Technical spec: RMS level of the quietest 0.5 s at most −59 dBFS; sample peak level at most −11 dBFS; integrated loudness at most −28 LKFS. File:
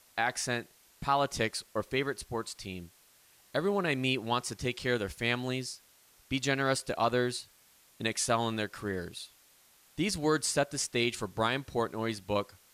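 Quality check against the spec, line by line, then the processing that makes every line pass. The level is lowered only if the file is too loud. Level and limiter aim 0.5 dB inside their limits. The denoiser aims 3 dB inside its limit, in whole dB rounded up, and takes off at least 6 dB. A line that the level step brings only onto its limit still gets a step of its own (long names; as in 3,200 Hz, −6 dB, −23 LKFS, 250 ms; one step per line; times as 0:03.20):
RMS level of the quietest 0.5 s −63 dBFS: in spec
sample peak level −15.5 dBFS: in spec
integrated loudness −32.0 LKFS: in spec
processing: no processing needed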